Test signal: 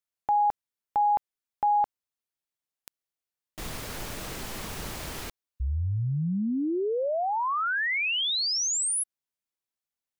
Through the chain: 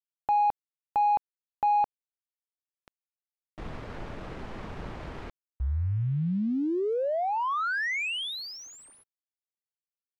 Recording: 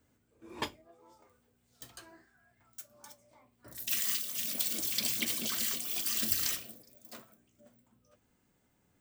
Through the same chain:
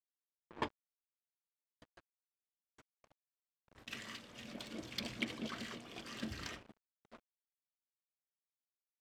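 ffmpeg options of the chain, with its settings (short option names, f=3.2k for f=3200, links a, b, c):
-af "aeval=exprs='val(0)*gte(abs(val(0)),0.00708)':c=same,adynamicsmooth=sensitivity=1.5:basefreq=1.7k"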